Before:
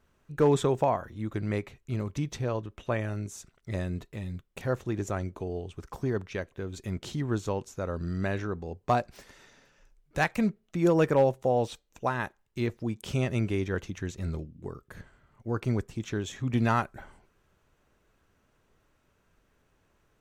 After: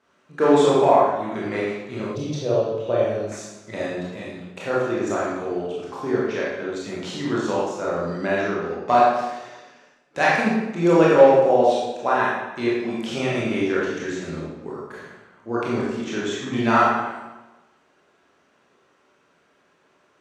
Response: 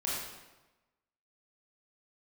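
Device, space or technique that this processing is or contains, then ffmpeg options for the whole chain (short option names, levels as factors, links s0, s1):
supermarket ceiling speaker: -filter_complex "[0:a]highpass=270,lowpass=6600[s0];[1:a]atrim=start_sample=2205[s1];[s0][s1]afir=irnorm=-1:irlink=0,asettb=1/sr,asplit=3[s2][s3][s4];[s2]atrim=end=2.154[s5];[s3]atrim=start=2.15:end=3.32,asetpts=PTS-STARTPTS,afade=t=in:d=0.004:c=qsin,afade=t=out:st=1.166:d=0.004:c=qsin,equalizer=f=125:t=o:w=1:g=7,equalizer=f=250:t=o:w=1:g=-6,equalizer=f=500:t=o:w=1:g=7,equalizer=f=1000:t=o:w=1:g=-7,equalizer=f=2000:t=o:w=1:g=-12,equalizer=f=4000:t=o:w=1:g=4,equalizer=f=8000:t=o:w=1:g=-7[s6];[s4]atrim=start=3.316[s7];[s5][s6]acrossfade=d=0.004:c1=hsin:c2=qsin[s8];[s8][s7]acrossfade=d=0.004:c1=qsin:c2=hsin,volume=1.88"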